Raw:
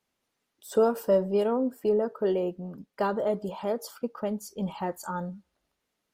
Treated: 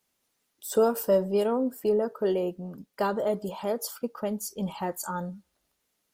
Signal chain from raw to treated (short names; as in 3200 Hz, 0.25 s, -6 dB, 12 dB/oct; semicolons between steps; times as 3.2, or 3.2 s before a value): high shelf 5500 Hz +11 dB